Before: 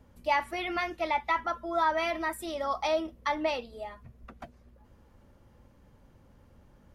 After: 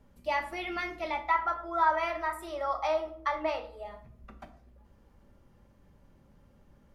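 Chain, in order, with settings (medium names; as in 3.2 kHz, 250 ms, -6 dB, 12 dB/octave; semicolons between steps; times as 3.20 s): 1.23–3.85 s: FFT filter 110 Hz 0 dB, 220 Hz -12 dB, 330 Hz -3 dB, 1.2 kHz +6 dB, 3.5 kHz -4 dB; simulated room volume 630 m³, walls furnished, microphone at 1.2 m; trim -4 dB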